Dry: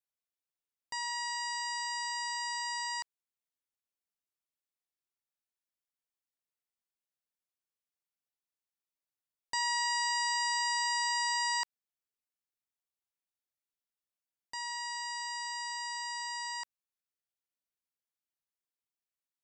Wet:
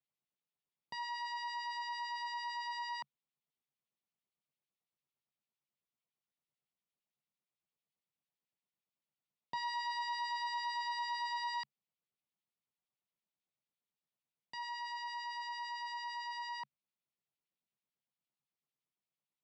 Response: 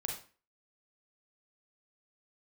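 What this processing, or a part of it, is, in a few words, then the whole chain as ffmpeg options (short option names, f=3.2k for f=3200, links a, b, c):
guitar amplifier with harmonic tremolo: -filter_complex "[0:a]acrossover=split=1700[a][b];[a]aeval=exprs='val(0)*(1-0.7/2+0.7/2*cos(2*PI*8.9*n/s))':c=same[c];[b]aeval=exprs='val(0)*(1-0.7/2-0.7/2*cos(2*PI*8.9*n/s))':c=same[d];[c][d]amix=inputs=2:normalize=0,asoftclip=type=tanh:threshold=-35.5dB,highpass=96,equalizer=f=140:t=q:w=4:g=10,equalizer=f=200:t=q:w=4:g=7,equalizer=f=1.6k:t=q:w=4:g=-10,lowpass=f=4k:w=0.5412,lowpass=f=4k:w=1.3066,volume=4dB"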